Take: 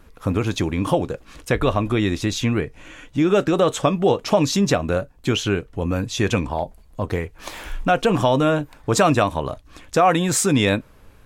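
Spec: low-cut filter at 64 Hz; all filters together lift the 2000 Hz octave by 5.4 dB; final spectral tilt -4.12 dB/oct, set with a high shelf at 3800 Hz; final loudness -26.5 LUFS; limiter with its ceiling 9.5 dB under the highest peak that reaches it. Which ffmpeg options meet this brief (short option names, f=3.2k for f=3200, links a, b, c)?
-af "highpass=64,equalizer=f=2k:t=o:g=5.5,highshelf=f=3.8k:g=6.5,volume=-5dB,alimiter=limit=-14dB:level=0:latency=1"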